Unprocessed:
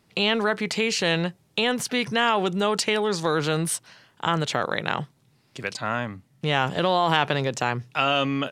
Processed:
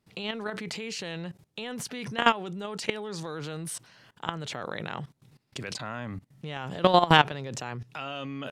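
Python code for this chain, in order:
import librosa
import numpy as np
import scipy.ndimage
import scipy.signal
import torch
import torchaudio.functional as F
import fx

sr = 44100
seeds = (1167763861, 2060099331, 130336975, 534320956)

y = fx.low_shelf(x, sr, hz=320.0, db=4.0)
y = fx.level_steps(y, sr, step_db=20)
y = y * librosa.db_to_amplitude(4.0)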